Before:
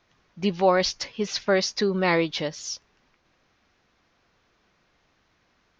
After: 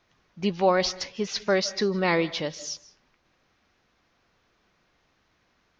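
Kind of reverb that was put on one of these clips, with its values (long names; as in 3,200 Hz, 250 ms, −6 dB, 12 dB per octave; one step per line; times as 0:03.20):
comb and all-pass reverb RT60 0.49 s, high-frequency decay 0.55×, pre-delay 115 ms, DRR 18 dB
level −1.5 dB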